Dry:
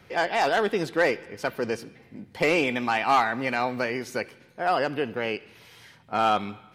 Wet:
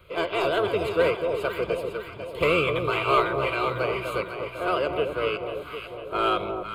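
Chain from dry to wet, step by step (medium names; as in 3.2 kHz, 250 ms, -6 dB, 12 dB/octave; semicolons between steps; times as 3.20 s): harmony voices -12 st -5 dB, +4 st -17 dB; static phaser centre 1.2 kHz, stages 8; echo whose repeats swap between lows and highs 250 ms, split 1 kHz, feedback 73%, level -5 dB; trim +1.5 dB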